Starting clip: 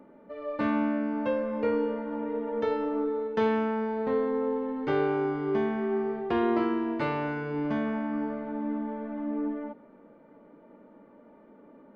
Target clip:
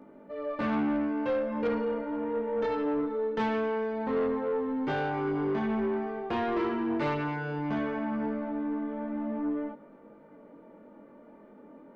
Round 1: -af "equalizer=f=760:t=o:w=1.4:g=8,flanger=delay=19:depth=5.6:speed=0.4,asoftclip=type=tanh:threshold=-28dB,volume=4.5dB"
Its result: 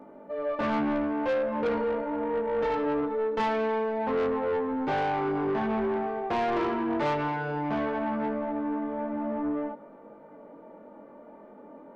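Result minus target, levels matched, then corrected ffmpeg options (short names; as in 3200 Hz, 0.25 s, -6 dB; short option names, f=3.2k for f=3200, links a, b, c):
1000 Hz band +3.0 dB
-af "flanger=delay=19:depth=5.6:speed=0.4,asoftclip=type=tanh:threshold=-28dB,volume=4.5dB"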